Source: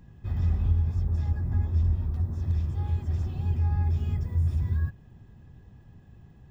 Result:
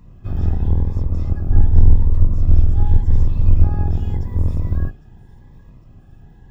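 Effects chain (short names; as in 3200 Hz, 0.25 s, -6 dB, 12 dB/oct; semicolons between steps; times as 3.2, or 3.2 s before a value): octaver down 2 oct, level +2 dB; 1.49–3.64 low shelf 70 Hz +12 dB; hard clip -5.5 dBFS, distortion -28 dB; bell 990 Hz +7.5 dB 1.3 oct; thin delay 0.804 s, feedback 58%, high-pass 1800 Hz, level -17.5 dB; cascading phaser rising 0.87 Hz; gain +4 dB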